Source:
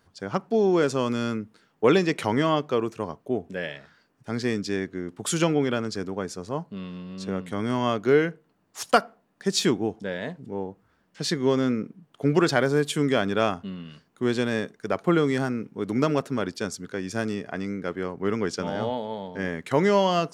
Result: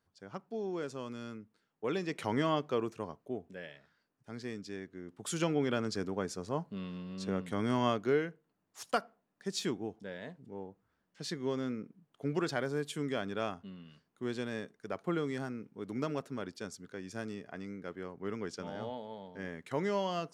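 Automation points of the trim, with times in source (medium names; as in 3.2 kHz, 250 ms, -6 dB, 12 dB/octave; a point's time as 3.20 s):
1.86 s -16.5 dB
2.35 s -8 dB
2.88 s -8 dB
3.69 s -15 dB
4.87 s -15 dB
5.88 s -5 dB
7.86 s -5 dB
8.27 s -12.5 dB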